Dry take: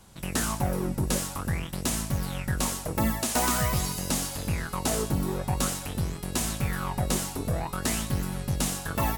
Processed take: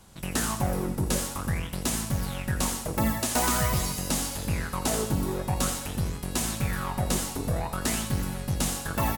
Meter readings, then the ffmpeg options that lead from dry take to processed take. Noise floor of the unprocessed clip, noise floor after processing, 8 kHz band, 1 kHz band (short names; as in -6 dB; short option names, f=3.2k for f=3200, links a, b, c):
-39 dBFS, -37 dBFS, +0.5 dB, +0.5 dB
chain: -af "aecho=1:1:83|166|249|332|415:0.282|0.13|0.0596|0.0274|0.0126"